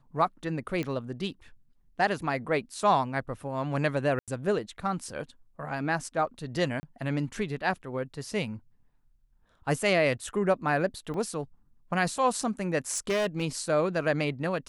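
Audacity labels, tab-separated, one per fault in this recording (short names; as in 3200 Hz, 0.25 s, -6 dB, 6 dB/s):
0.830000	0.830000	pop -20 dBFS
4.190000	4.280000	gap 87 ms
6.800000	6.830000	gap 30 ms
11.140000	11.140000	gap 2.3 ms
12.930000	13.430000	clipped -23.5 dBFS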